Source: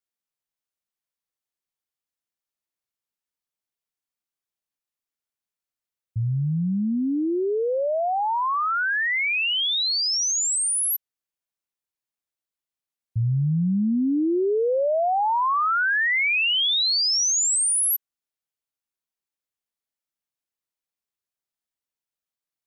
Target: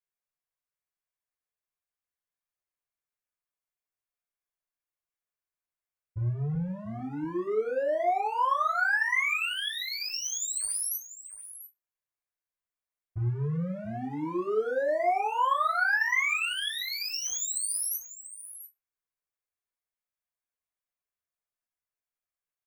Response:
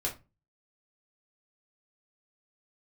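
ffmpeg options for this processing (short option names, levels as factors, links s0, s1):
-filter_complex "[0:a]asettb=1/sr,asplit=3[s0][s1][s2];[s0]atrim=end=6.544[s3];[s1]atrim=start=6.54:end=6.99,asetpts=PTS-STARTPTS,afade=t=in:d=0.004:c=qsin,afade=t=out:st=0.446:d=0.004:c=qsin,highpass=100[s4];[s2]atrim=start=6.986[s5];[s3][s4]acrossfade=d=0.004:c1=hsin:c2=qsin[s6];[s6][s5]acrossfade=d=0.004:c1=qsin:c2=hsin,asoftclip=type=hard:threshold=0.0708,equalizer=f=250:t=o:w=1:g=-9,equalizer=f=1000:t=o:w=1:g=3,equalizer=f=2000:t=o:w=1:g=4,equalizer=f=4000:t=o:w=1:g=-7,aecho=1:1:690:0.211[s7];[1:a]atrim=start_sample=2205[s8];[s7][s8]afir=irnorm=-1:irlink=0,volume=0.376"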